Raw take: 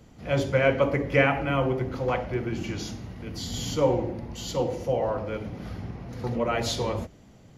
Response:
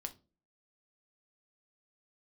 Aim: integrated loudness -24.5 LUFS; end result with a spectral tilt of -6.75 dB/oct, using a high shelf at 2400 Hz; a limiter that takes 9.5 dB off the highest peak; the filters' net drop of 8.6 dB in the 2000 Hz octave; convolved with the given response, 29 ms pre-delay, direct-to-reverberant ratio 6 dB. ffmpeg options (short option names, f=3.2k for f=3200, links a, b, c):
-filter_complex "[0:a]equalizer=f=2k:t=o:g=-7.5,highshelf=f=2.4k:g=-7.5,alimiter=limit=-18.5dB:level=0:latency=1,asplit=2[a][b];[1:a]atrim=start_sample=2205,adelay=29[c];[b][c]afir=irnorm=-1:irlink=0,volume=-3.5dB[d];[a][d]amix=inputs=2:normalize=0,volume=5dB"